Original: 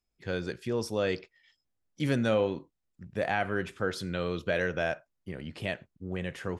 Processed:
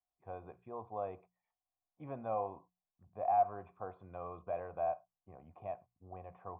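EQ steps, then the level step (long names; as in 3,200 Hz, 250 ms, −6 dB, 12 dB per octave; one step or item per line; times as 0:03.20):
formant resonators in series a
parametric band 87 Hz +9 dB 1 octave
mains-hum notches 60/120/180 Hz
+6.0 dB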